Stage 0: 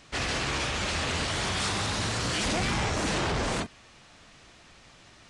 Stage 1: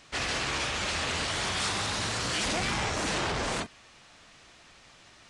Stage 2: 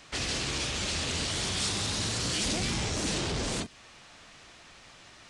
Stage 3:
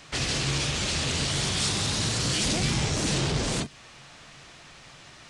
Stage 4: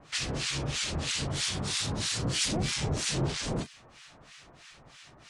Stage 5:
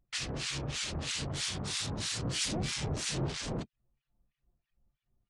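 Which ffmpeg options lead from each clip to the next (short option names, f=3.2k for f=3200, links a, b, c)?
-af "lowshelf=f=400:g=-5.5"
-filter_complex "[0:a]acrossover=split=460|3000[a][b][c];[b]acompressor=threshold=-43dB:ratio=6[d];[a][d][c]amix=inputs=3:normalize=0,volume=2.5dB"
-af "equalizer=f=140:t=o:w=0.27:g=10,volume=3.5dB"
-filter_complex "[0:a]acrossover=split=1200[a][b];[a]aeval=exprs='val(0)*(1-1/2+1/2*cos(2*PI*3.1*n/s))':c=same[c];[b]aeval=exprs='val(0)*(1-1/2-1/2*cos(2*PI*3.1*n/s))':c=same[d];[c][d]amix=inputs=2:normalize=0"
-af "anlmdn=1.58,volume=-4dB"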